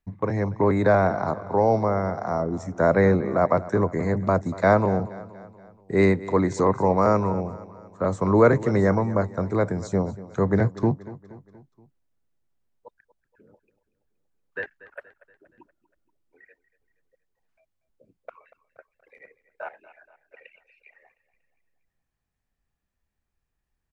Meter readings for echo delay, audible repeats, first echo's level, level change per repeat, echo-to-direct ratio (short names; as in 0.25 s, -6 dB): 0.237 s, 4, -17.5 dB, -5.5 dB, -16.0 dB